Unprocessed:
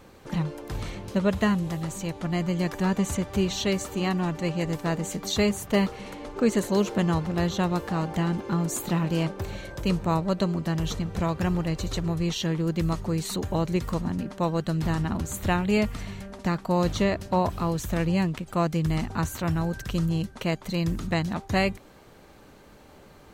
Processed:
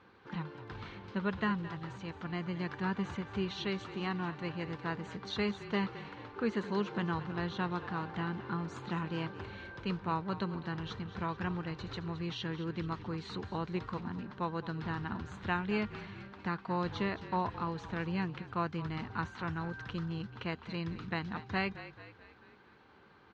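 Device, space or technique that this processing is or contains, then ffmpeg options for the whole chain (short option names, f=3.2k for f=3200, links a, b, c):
frequency-shifting delay pedal into a guitar cabinet: -filter_complex "[0:a]asplit=6[a][b][c][d][e][f];[b]adelay=218,afreqshift=-41,volume=-14dB[g];[c]adelay=436,afreqshift=-82,volume=-19.7dB[h];[d]adelay=654,afreqshift=-123,volume=-25.4dB[i];[e]adelay=872,afreqshift=-164,volume=-31dB[j];[f]adelay=1090,afreqshift=-205,volume=-36.7dB[k];[a][g][h][i][j][k]amix=inputs=6:normalize=0,highpass=100,equalizer=f=150:t=q:w=4:g=-5,equalizer=f=270:t=q:w=4:g=-4,equalizer=f=600:t=q:w=4:g=-10,equalizer=f=1k:t=q:w=4:g=4,equalizer=f=1.5k:t=q:w=4:g=7,lowpass=f=4.2k:w=0.5412,lowpass=f=4.2k:w=1.3066,volume=-8.5dB"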